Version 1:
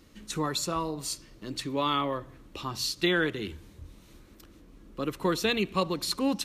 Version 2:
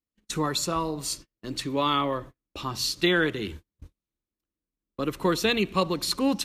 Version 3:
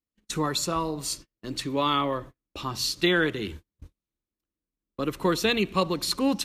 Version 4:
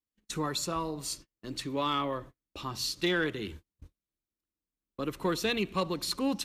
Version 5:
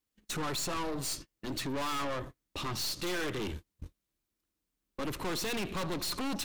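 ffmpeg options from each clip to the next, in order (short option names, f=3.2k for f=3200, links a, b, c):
-af "agate=range=-41dB:threshold=-42dB:ratio=16:detection=peak,volume=3dB"
-af anull
-af "asoftclip=type=tanh:threshold=-12.5dB,volume=-5dB"
-af "aeval=exprs='(tanh(126*val(0)+0.5)-tanh(0.5))/126':c=same,volume=9dB"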